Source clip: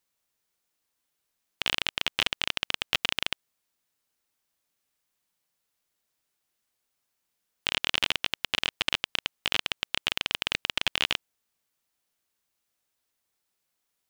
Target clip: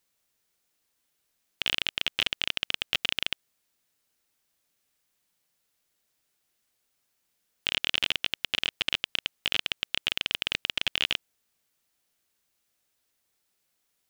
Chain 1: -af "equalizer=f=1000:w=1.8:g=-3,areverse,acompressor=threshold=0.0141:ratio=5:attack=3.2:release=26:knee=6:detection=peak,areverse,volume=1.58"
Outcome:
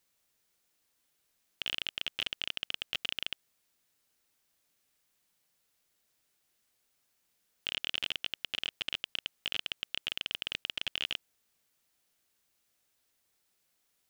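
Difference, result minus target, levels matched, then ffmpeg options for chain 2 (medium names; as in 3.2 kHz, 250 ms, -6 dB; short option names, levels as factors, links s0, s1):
compression: peak gain reduction +9 dB
-af "equalizer=f=1000:w=1.8:g=-3,areverse,acompressor=threshold=0.0501:ratio=5:attack=3.2:release=26:knee=6:detection=peak,areverse,volume=1.58"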